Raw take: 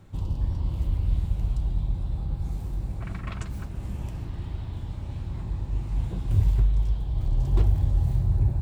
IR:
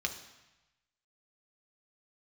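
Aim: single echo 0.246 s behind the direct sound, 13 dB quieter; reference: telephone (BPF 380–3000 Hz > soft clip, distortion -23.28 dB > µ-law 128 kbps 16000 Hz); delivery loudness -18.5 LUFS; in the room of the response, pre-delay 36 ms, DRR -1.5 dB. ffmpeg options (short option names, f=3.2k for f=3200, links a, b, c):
-filter_complex "[0:a]aecho=1:1:246:0.224,asplit=2[a][b];[1:a]atrim=start_sample=2205,adelay=36[c];[b][c]afir=irnorm=-1:irlink=0,volume=-2.5dB[d];[a][d]amix=inputs=2:normalize=0,highpass=380,lowpass=3k,asoftclip=threshold=-29dB,volume=26.5dB" -ar 16000 -c:a pcm_mulaw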